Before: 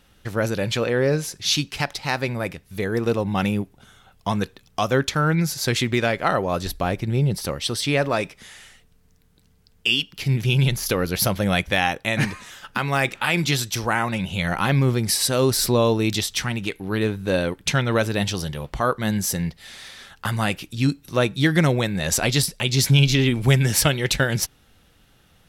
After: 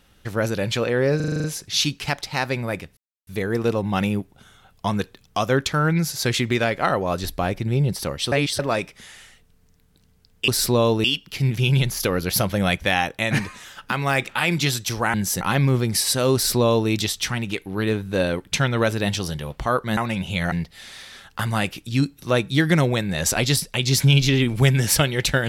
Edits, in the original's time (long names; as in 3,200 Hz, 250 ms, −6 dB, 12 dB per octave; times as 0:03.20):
0:01.16: stutter 0.04 s, 8 plays
0:02.69: splice in silence 0.30 s
0:07.74–0:08.01: reverse
0:14.00–0:14.55: swap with 0:19.11–0:19.38
0:15.48–0:16.04: duplicate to 0:09.90